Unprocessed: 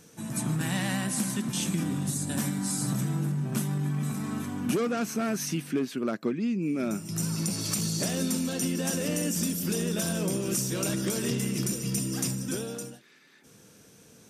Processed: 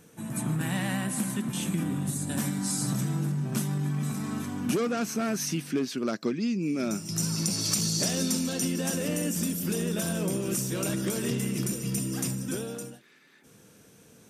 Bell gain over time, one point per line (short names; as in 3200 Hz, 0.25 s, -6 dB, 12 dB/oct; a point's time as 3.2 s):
bell 5300 Hz 0.95 oct
2.03 s -8 dB
2.65 s +2.5 dB
5.53 s +2.5 dB
6.25 s +13.5 dB
7.21 s +6 dB
8.31 s +6 dB
9.15 s -4 dB